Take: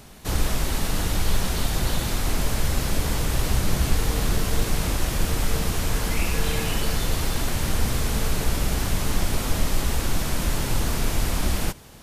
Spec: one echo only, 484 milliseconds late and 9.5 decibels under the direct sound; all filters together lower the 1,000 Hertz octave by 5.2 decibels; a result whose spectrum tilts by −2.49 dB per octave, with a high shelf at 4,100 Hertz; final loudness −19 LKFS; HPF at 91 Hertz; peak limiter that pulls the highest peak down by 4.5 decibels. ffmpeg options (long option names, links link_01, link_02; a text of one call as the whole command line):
ffmpeg -i in.wav -af "highpass=91,equalizer=frequency=1000:width_type=o:gain=-7.5,highshelf=frequency=4100:gain=7.5,alimiter=limit=-17.5dB:level=0:latency=1,aecho=1:1:484:0.335,volume=6.5dB" out.wav